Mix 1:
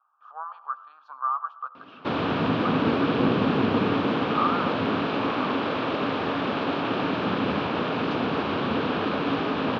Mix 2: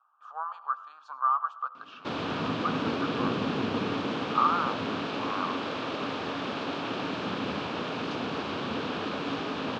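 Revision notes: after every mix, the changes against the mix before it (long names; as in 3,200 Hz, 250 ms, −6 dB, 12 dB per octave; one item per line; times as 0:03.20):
background −7.5 dB
master: remove high-frequency loss of the air 210 metres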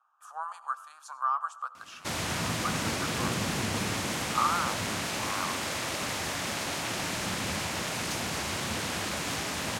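master: remove loudspeaker in its box 130–3,700 Hz, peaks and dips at 270 Hz +9 dB, 440 Hz +8 dB, 1,200 Hz +4 dB, 2,000 Hz −10 dB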